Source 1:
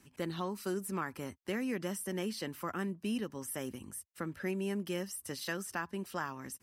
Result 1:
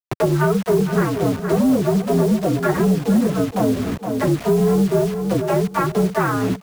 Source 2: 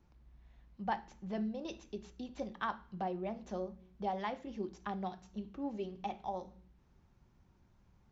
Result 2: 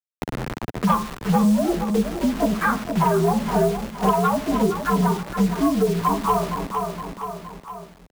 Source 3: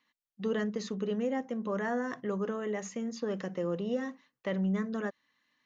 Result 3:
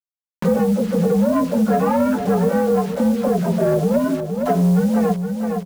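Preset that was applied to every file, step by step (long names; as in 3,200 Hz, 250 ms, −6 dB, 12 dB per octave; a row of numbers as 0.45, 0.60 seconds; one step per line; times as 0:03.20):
partials spread apart or drawn together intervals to 122%
low-pass filter 1,400 Hz 24 dB per octave
in parallel at −1 dB: brickwall limiter −31.5 dBFS
on the sum: leveller curve on the samples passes 1
all-pass dispersion lows, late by 50 ms, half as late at 550 Hz
bit-depth reduction 8 bits, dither none
on a send: repeating echo 466 ms, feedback 26%, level −11 dB
on the sum: multiband upward and downward compressor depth 70%
normalise the peak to −6 dBFS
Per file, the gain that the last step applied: +14.5, +14.0, +11.0 decibels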